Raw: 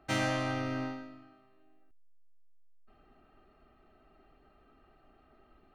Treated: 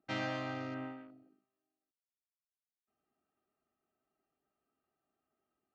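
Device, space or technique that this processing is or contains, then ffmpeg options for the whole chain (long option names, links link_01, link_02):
over-cleaned archive recording: -af "highpass=120,lowpass=6100,afwtdn=0.00316,volume=-6dB"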